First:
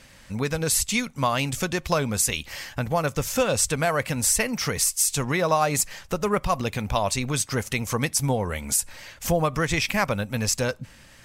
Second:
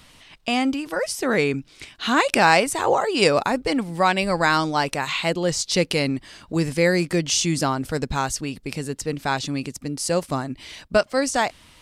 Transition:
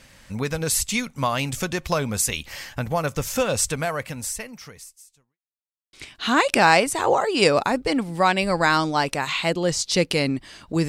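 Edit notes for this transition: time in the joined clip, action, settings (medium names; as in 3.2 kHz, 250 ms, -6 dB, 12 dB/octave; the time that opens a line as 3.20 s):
first
3.63–5.39 s: fade out quadratic
5.39–5.93 s: mute
5.93 s: go over to second from 1.73 s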